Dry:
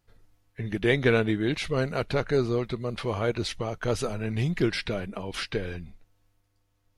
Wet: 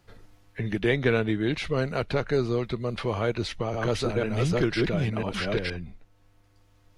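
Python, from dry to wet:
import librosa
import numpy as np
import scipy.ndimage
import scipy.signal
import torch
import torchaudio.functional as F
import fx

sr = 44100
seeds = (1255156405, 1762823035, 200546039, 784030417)

y = fx.reverse_delay(x, sr, ms=497, wet_db=-1.0, at=(3.24, 5.7))
y = fx.high_shelf(y, sr, hz=8500.0, db=-9.0)
y = fx.band_squash(y, sr, depth_pct=40)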